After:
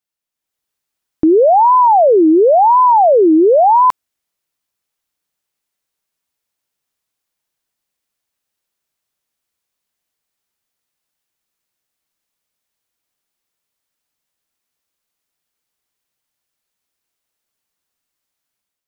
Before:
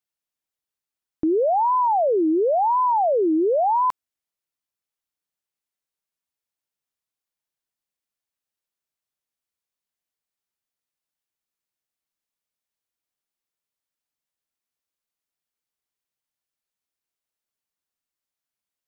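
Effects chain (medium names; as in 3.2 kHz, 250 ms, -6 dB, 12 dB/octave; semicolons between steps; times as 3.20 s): level rider gain up to 8 dB; trim +2.5 dB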